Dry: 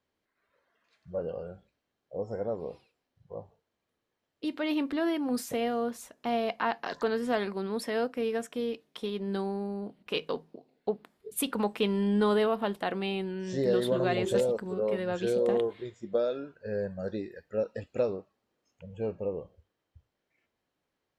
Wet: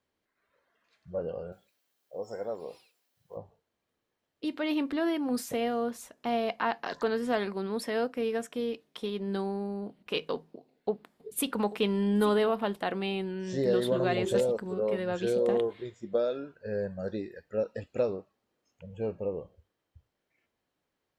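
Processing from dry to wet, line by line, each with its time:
1.52–3.37 s: RIAA curve recording
10.36–12.61 s: delay 838 ms -15.5 dB

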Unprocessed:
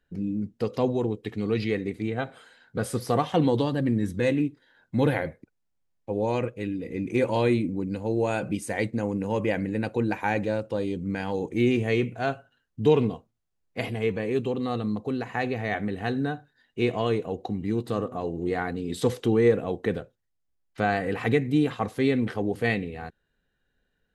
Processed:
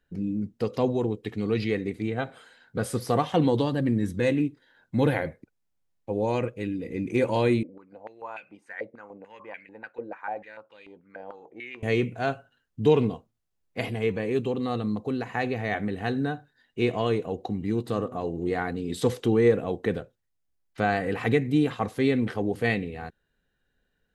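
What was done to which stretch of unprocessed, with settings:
7.63–11.83 s: step-sequenced band-pass 6.8 Hz 570–2400 Hz

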